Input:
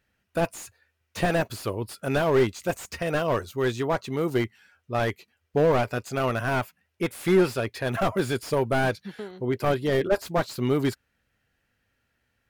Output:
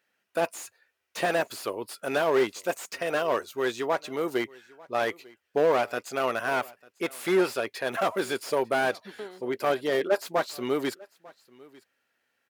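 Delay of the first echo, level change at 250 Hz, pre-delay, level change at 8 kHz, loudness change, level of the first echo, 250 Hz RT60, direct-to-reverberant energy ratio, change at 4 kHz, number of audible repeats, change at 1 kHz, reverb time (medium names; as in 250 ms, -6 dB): 897 ms, -5.5 dB, no reverb, 0.0 dB, -2.0 dB, -23.5 dB, no reverb, no reverb, 0.0 dB, 1, 0.0 dB, no reverb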